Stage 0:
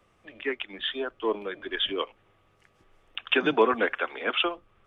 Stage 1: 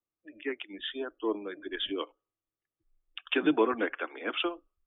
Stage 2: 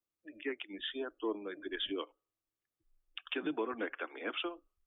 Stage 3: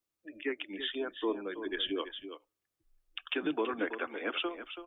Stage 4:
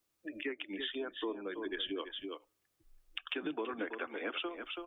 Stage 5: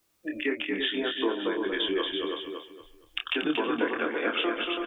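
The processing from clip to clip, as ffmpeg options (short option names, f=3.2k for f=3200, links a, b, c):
-af "afftdn=nr=28:nf=-45,equalizer=f=310:w=3.8:g=10.5,volume=-6.5dB"
-filter_complex "[0:a]asplit=2[a][b];[b]acompressor=threshold=-37dB:ratio=6,volume=-2dB[c];[a][c]amix=inputs=2:normalize=0,alimiter=limit=-19dB:level=0:latency=1:release=337,volume=-6.5dB"
-af "aecho=1:1:330:0.299,volume=3.5dB"
-af "acompressor=threshold=-48dB:ratio=2.5,volume=7dB"
-filter_complex "[0:a]asplit=2[a][b];[b]adelay=26,volume=-5dB[c];[a][c]amix=inputs=2:normalize=0,asplit=2[d][e];[e]aecho=0:1:233|466|699|932:0.596|0.173|0.0501|0.0145[f];[d][f]amix=inputs=2:normalize=0,volume=8.5dB"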